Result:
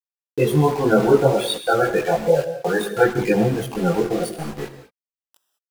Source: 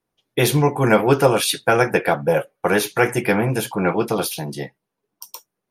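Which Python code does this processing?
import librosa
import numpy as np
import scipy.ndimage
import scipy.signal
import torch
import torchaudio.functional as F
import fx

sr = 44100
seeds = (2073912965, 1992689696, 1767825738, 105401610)

y = fx.dynamic_eq(x, sr, hz=130.0, q=3.6, threshold_db=-31.0, ratio=4.0, max_db=-3)
y = fx.spec_topn(y, sr, count=16)
y = np.where(np.abs(y) >= 10.0 ** (-28.5 / 20.0), y, 0.0)
y = fx.rev_gated(y, sr, seeds[0], gate_ms=230, shape='flat', drr_db=9.0)
y = fx.chorus_voices(y, sr, voices=4, hz=1.2, base_ms=21, depth_ms=3.0, mix_pct=50)
y = y * librosa.db_to_amplitude(3.5)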